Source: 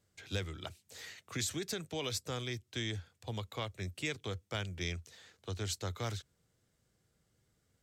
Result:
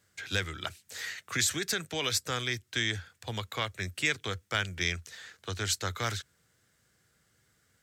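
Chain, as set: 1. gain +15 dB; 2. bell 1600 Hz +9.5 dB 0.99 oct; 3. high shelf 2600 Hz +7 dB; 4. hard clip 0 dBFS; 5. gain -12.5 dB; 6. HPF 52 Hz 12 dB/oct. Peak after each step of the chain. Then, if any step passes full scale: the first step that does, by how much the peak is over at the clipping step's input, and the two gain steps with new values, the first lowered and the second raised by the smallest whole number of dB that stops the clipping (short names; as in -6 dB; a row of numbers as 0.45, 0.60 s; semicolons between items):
-8.5, -4.5, -1.5, -1.5, -14.0, -14.0 dBFS; no overload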